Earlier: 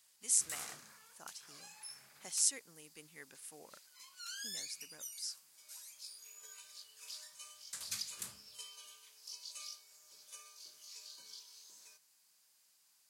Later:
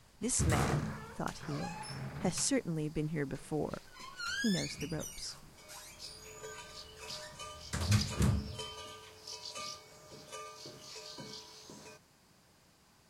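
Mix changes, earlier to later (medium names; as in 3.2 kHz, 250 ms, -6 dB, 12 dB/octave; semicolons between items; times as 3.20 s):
speech -3.0 dB; master: remove differentiator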